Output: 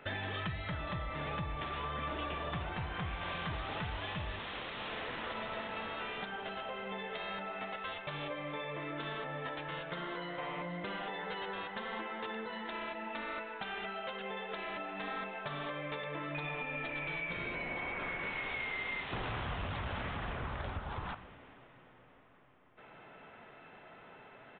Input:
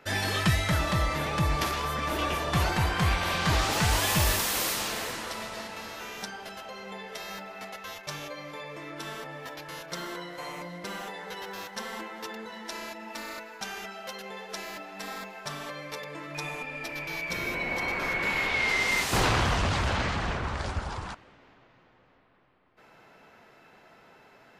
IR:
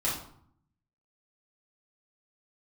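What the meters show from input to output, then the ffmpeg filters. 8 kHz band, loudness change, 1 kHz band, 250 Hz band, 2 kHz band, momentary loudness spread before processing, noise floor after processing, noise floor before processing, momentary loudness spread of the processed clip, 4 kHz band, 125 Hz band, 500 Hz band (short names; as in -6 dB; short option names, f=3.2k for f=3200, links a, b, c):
under -40 dB, -9.5 dB, -7.5 dB, -8.5 dB, -8.5 dB, 15 LU, -57 dBFS, -58 dBFS, 5 LU, -11.0 dB, -11.0 dB, -6.0 dB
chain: -filter_complex "[0:a]acompressor=threshold=-36dB:ratio=12,asplit=2[a][b];[1:a]atrim=start_sample=2205[c];[b][c]afir=irnorm=-1:irlink=0,volume=-20dB[d];[a][d]amix=inputs=2:normalize=0,aresample=8000,aresample=44100"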